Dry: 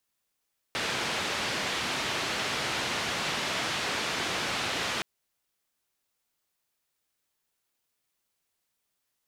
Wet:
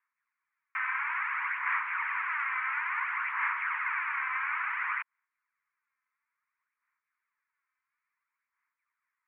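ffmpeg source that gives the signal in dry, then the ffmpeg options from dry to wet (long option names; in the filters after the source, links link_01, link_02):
-f lavfi -i "anoisesrc=color=white:duration=4.27:sample_rate=44100:seed=1,highpass=frequency=89,lowpass=frequency=3600,volume=-18.6dB"
-filter_complex "[0:a]asplit=2[link_01][link_02];[link_02]asoftclip=type=tanh:threshold=-35dB,volume=-4dB[link_03];[link_01][link_03]amix=inputs=2:normalize=0,aphaser=in_gain=1:out_gain=1:delay=3.9:decay=0.46:speed=0.58:type=sinusoidal,asuperpass=centerf=1500:order=12:qfactor=1.1"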